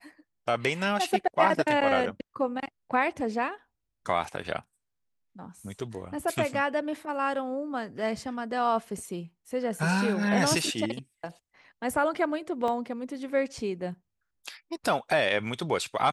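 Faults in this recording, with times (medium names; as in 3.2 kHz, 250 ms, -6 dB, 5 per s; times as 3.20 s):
12.68 s: dropout 2 ms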